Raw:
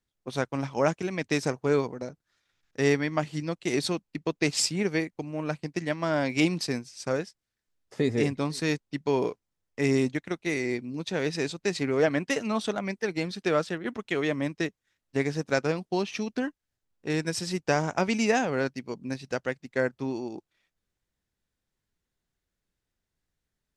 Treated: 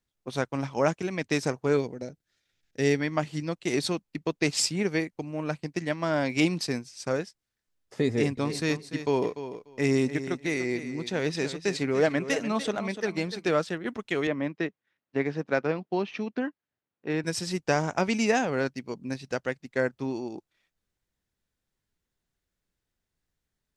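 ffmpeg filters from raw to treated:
-filter_complex "[0:a]asettb=1/sr,asplit=3[s0][s1][s2];[s0]atrim=end=1.774[s3];[s1]atrim=start=1.77:end=3.01,asetpts=PTS-STARTPTS,afade=t=in:d=0.004:c=qsin,afade=t=out:st=1.236:d=0.004:c=qsin,equalizer=f=1100:w=1.8:g=-11[s4];[s2]atrim=start=3.006[s5];[s3][s4]acrossfade=d=0.004:c1=hsin:c2=qsin[s6];[s6][s5]acrossfade=d=0.004:c1=qsin:c2=hsin,asettb=1/sr,asplit=3[s7][s8][s9];[s7]atrim=end=8.084[s10];[s8]atrim=start=8.08:end=13.51,asetpts=PTS-STARTPTS,afade=t=in:d=0.004:c=qsin,afade=t=out:st=5.426:d=0.004:c=qsin,aecho=1:1:294|588:0.266|0.0426,atrim=end_sample=239463[s11];[s9]atrim=start=13.506[s12];[s10][s11]acrossfade=d=0.004:c1=hsin:c2=qsin[s13];[s13][s12]acrossfade=d=0.004:c1=qsin:c2=hsin,asettb=1/sr,asplit=3[s14][s15][s16];[s14]atrim=end=14.274[s17];[s15]atrim=start=14.27:end=17.24,asetpts=PTS-STARTPTS,afade=t=in:d=0.004:c=qsin,afade=t=out:st=2.966:d=0.004:c=qsin,highpass=150,lowpass=2800[s18];[s16]atrim=start=17.236[s19];[s17][s18]acrossfade=d=0.004:c1=hsin:c2=qsin[s20];[s20][s19]acrossfade=d=0.004:c1=qsin:c2=hsin"

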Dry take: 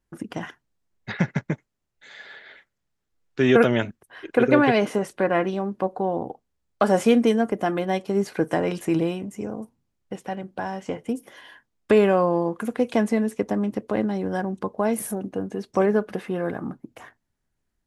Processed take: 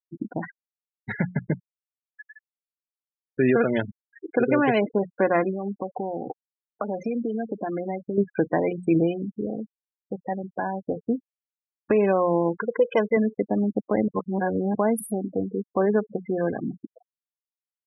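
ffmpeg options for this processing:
-filter_complex "[0:a]asettb=1/sr,asplit=3[s0][s1][s2];[s0]atrim=end=1.224[s3];[s1]atrim=start=1.22:end=3.59,asetpts=PTS-STARTPTS,afade=t=in:d=0.004:c=qsin,afade=t=out:st=2.366:d=0.004:c=qsin,lowpass=2600[s4];[s2]atrim=start=3.586[s5];[s3][s4]acrossfade=d=0.004:c1=hsin:c2=qsin[s6];[s6][s5]acrossfade=d=0.004:c1=qsin:c2=hsin,asettb=1/sr,asplit=3[s7][s8][s9];[s7]atrim=end=5.514[s10];[s8]atrim=start=5.51:end=8.18,asetpts=PTS-STARTPTS,afade=t=in:d=0.004:c=qsin,afade=t=out:st=2.666:d=0.004:c=qsin,acompressor=threshold=0.0501:ratio=6:attack=3.2:release=140:knee=1:detection=peak[s11];[s9]atrim=start=8.176[s12];[s10][s11]acrossfade=d=0.004:c1=hsin:c2=qsin[s13];[s13][s12]acrossfade=d=0.004:c1=qsin:c2=hsin,asettb=1/sr,asplit=3[s14][s15][s16];[s14]atrim=end=12.584[s17];[s15]atrim=start=12.58:end=13.17,asetpts=PTS-STARTPTS,afade=t=in:d=0.004:c=qsin,afade=t=out:st=0.586:d=0.004:c=qsin,aecho=1:1:2:0.77,atrim=end_sample=26019[s18];[s16]atrim=start=13.166[s19];[s17][s18]acrossfade=d=0.004:c1=hsin:c2=qsin[s20];[s20][s19]acrossfade=d=0.004:c1=qsin:c2=hsin,asplit=3[s21][s22][s23];[s21]atrim=end=14.082[s24];[s22]atrim=start=14.078:end=14.752,asetpts=PTS-STARTPTS,areverse[s25];[s23]atrim=start=14.748[s26];[s24][s25]acrossfade=d=0.004:c1=hsin:c2=hsin[s27];[s27][s26]acrossfade=d=0.004:c1=hsin:c2=hsin,bandreject=f=60:t=h:w=6,bandreject=f=120:t=h:w=6,bandreject=f=180:t=h:w=6,alimiter=limit=0.237:level=0:latency=1:release=360,afftfilt=real='re*gte(hypot(re,im),0.0501)':imag='im*gte(hypot(re,im),0.0501)':win_size=1024:overlap=0.75,volume=1.26"

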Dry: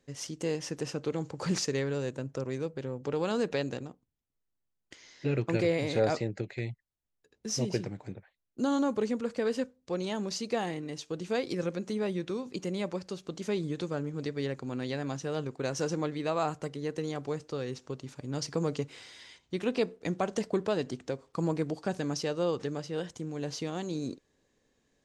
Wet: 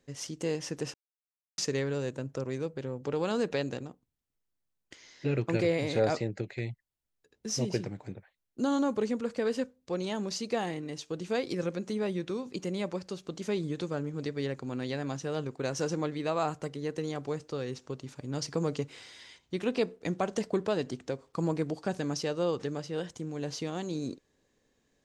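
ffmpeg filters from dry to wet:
-filter_complex "[0:a]asplit=3[s0][s1][s2];[s0]atrim=end=0.94,asetpts=PTS-STARTPTS,afade=t=out:st=0.936:d=0.004:c=hsin[s3];[s1]atrim=start=0.94:end=1.58,asetpts=PTS-STARTPTS,volume=0[s4];[s2]atrim=start=1.58,asetpts=PTS-STARTPTS,afade=t=in:d=0.004:c=hsin[s5];[s3][s4][s5]concat=n=3:v=0:a=1"

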